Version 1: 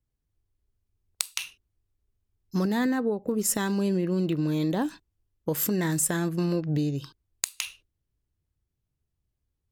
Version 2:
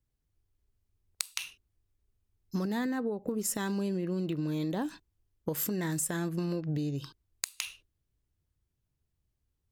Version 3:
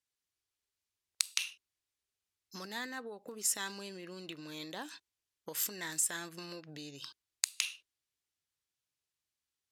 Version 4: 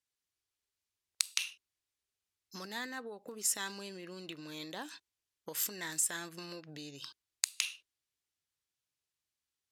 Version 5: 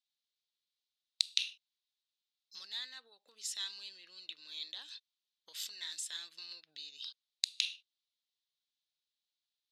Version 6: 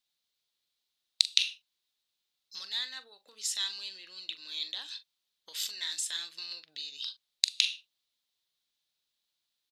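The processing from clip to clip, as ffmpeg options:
ffmpeg -i in.wav -af "acompressor=threshold=-30dB:ratio=4" out.wav
ffmpeg -i in.wav -af "bandpass=frequency=4700:width_type=q:width=0.5:csg=0,volume=3.5dB" out.wav
ffmpeg -i in.wav -af anull out.wav
ffmpeg -i in.wav -af "bandpass=frequency=3800:width_type=q:width=3.9:csg=0,volume=7dB" out.wav
ffmpeg -i in.wav -filter_complex "[0:a]asplit=2[link_01][link_02];[link_02]adelay=42,volume=-13.5dB[link_03];[link_01][link_03]amix=inputs=2:normalize=0,volume=7dB" out.wav

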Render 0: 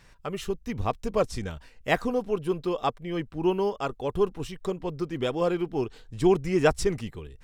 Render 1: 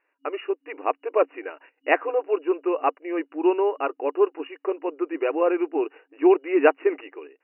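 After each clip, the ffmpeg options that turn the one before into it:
ffmpeg -i in.wav -af "agate=range=-17dB:threshold=-47dB:ratio=16:detection=peak,afftfilt=real='re*between(b*sr/4096,270,2900)':imag='im*between(b*sr/4096,270,2900)':win_size=4096:overlap=0.75,volume=4.5dB" out.wav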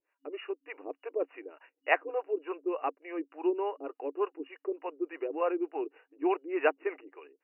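ffmpeg -i in.wav -filter_complex "[0:a]acrossover=split=470[link_01][link_02];[link_01]aeval=exprs='val(0)*(1-1/2+1/2*cos(2*PI*3.4*n/s))':channel_layout=same[link_03];[link_02]aeval=exprs='val(0)*(1-1/2-1/2*cos(2*PI*3.4*n/s))':channel_layout=same[link_04];[link_03][link_04]amix=inputs=2:normalize=0,volume=-4dB" out.wav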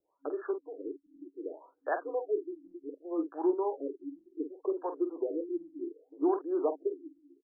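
ffmpeg -i in.wav -filter_complex "[0:a]acrossover=split=260|3000[link_01][link_02][link_03];[link_02]acompressor=threshold=-42dB:ratio=2.5[link_04];[link_01][link_04][link_03]amix=inputs=3:normalize=0,asplit=2[link_05][link_06];[link_06]adelay=47,volume=-8.5dB[link_07];[link_05][link_07]amix=inputs=2:normalize=0,afftfilt=real='re*lt(b*sr/1024,320*pow(1800/320,0.5+0.5*sin(2*PI*0.66*pts/sr)))':imag='im*lt(b*sr/1024,320*pow(1800/320,0.5+0.5*sin(2*PI*0.66*pts/sr)))':win_size=1024:overlap=0.75,volume=7.5dB" out.wav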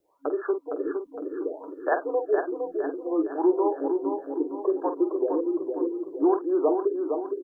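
ffmpeg -i in.wav -filter_complex "[0:a]asplit=2[link_01][link_02];[link_02]acompressor=threshold=-38dB:ratio=6,volume=-2dB[link_03];[link_01][link_03]amix=inputs=2:normalize=0,aecho=1:1:461|922|1383|1844|2305|2766:0.531|0.25|0.117|0.0551|0.0259|0.0122,volume=5dB" out.wav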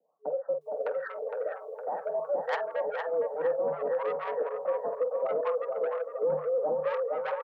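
ffmpeg -i in.wav -filter_complex "[0:a]asoftclip=type=tanh:threshold=-22.5dB,acrossover=split=670[link_01][link_02];[link_02]adelay=610[link_03];[link_01][link_03]amix=inputs=2:normalize=0,afreqshift=150" out.wav

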